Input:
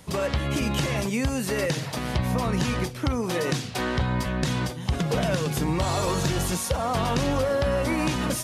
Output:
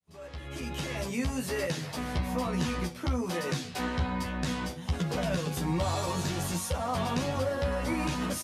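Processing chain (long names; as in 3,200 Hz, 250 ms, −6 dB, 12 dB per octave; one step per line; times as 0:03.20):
fade in at the beginning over 1.13 s
flanger 1.2 Hz, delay 10 ms, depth 7.8 ms, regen +67%
double-tracking delay 12 ms −2 dB
level −3.5 dB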